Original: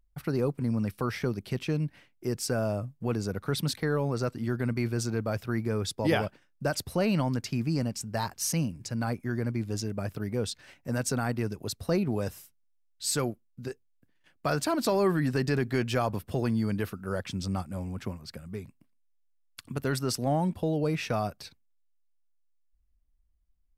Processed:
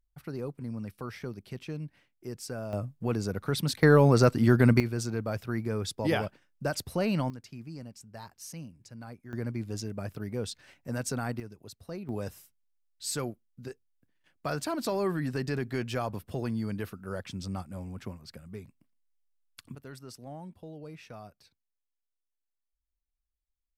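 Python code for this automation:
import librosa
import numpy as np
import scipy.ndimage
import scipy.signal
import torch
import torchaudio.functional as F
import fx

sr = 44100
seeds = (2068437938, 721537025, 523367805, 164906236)

y = fx.gain(x, sr, db=fx.steps((0.0, -8.5), (2.73, 0.0), (3.83, 9.0), (4.8, -2.0), (7.3, -14.0), (9.33, -3.5), (11.4, -13.0), (12.09, -4.5), (19.75, -16.5)))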